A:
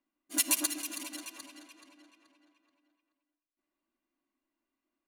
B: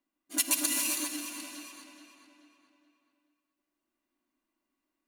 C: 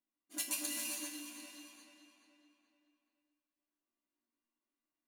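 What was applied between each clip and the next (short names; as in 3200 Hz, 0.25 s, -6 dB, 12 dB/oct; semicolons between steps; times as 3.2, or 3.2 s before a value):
non-linear reverb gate 0.43 s rising, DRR 1 dB
resonator bank D#2 major, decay 0.28 s; gain +1 dB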